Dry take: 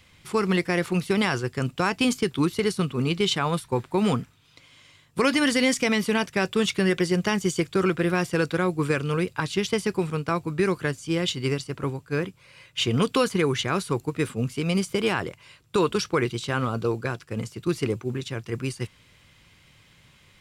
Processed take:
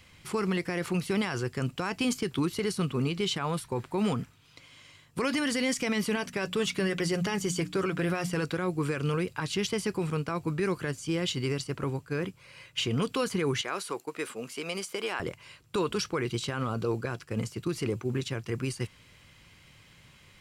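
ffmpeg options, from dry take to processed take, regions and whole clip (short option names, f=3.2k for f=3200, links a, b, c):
-filter_complex "[0:a]asettb=1/sr,asplit=3[a][b][c];[a]atrim=end=6.154[d];[b]atrim=start=6.15:end=8.45,asetpts=PTS-STARTPTS,afade=t=in:d=0.004:c=qsin,afade=t=out:st=2.296:d=0.004:c=qsin,bandreject=f=60:t=h:w=6,bandreject=f=120:t=h:w=6,bandreject=f=180:t=h:w=6,bandreject=f=240:t=h:w=6,bandreject=f=300:t=h:w=6,aecho=1:1:7.1:0.34,atrim=end_sample=101430[e];[c]atrim=start=8.446[f];[d][e]acrossfade=d=0.004:c1=hsin:c2=qsin[g];[g][f]acrossfade=d=0.004:c1=qsin:c2=hsin,asettb=1/sr,asplit=3[h][i][j];[h]atrim=end=13.614[k];[i]atrim=start=13.61:end=15.2,asetpts=PTS-STARTPTS,afade=t=in:d=0.004:c=qsin,afade=t=out:st=1.586:d=0.004:c=qsin,highpass=430,agate=range=-33dB:threshold=-47dB:ratio=3:release=100:detection=peak,acompressor=threshold=-36dB:ratio=1.5:attack=3.2:release=140:knee=1:detection=peak[l];[j]atrim=start=15.196[m];[k][l]acrossfade=d=0.004:c1=hsin:c2=qsin[n];[n][m]acrossfade=d=0.004:c1=qsin:c2=hsin,bandreject=f=3.6k:w=18,alimiter=limit=-20dB:level=0:latency=1:release=75"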